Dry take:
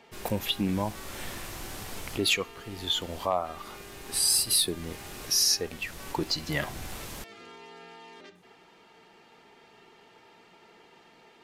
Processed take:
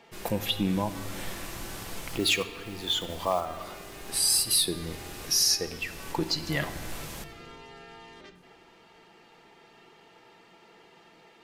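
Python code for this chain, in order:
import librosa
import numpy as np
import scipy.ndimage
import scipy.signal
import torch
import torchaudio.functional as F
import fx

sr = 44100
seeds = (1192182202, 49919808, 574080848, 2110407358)

y = fx.block_float(x, sr, bits=5, at=(2.08, 4.12))
y = fx.room_shoebox(y, sr, seeds[0], volume_m3=3800.0, walls='mixed', distance_m=0.73)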